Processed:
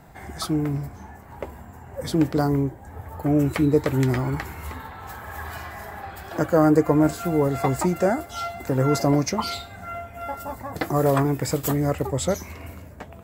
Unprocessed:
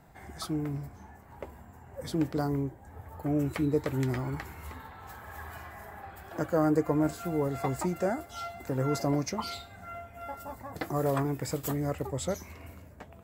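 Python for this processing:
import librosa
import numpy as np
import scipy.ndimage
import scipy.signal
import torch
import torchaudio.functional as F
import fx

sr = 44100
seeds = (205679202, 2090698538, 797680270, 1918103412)

y = fx.peak_eq(x, sr, hz=4500.0, db=5.5, octaves=1.1, at=(5.45, 6.38))
y = y * librosa.db_to_amplitude(8.5)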